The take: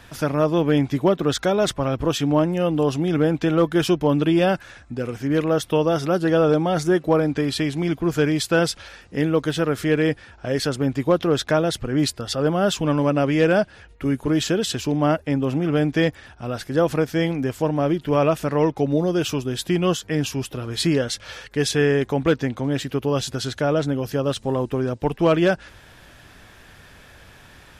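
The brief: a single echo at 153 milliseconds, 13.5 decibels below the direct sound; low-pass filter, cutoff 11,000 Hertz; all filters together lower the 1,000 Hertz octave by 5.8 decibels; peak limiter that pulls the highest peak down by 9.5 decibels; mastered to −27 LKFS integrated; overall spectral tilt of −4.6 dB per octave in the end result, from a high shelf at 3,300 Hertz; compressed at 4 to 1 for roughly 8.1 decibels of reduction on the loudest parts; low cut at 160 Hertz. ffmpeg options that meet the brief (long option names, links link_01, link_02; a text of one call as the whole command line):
ffmpeg -i in.wav -af "highpass=160,lowpass=11000,equalizer=frequency=1000:width_type=o:gain=-9,highshelf=frequency=3300:gain=5.5,acompressor=threshold=-25dB:ratio=4,alimiter=limit=-23dB:level=0:latency=1,aecho=1:1:153:0.211,volume=5.5dB" out.wav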